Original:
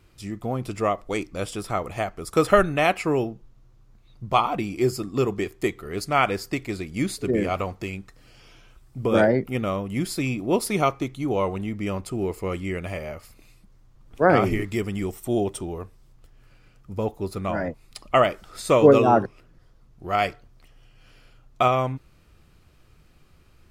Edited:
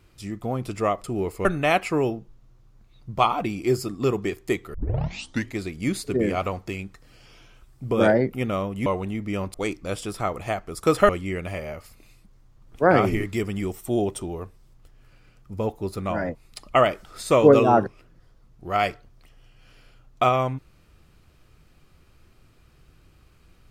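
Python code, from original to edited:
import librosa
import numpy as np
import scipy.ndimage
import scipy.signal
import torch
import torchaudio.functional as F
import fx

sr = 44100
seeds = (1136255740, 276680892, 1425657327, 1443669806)

y = fx.edit(x, sr, fx.swap(start_s=1.04, length_s=1.55, other_s=12.07, other_length_s=0.41),
    fx.tape_start(start_s=5.88, length_s=0.83),
    fx.cut(start_s=10.0, length_s=1.39), tone=tone)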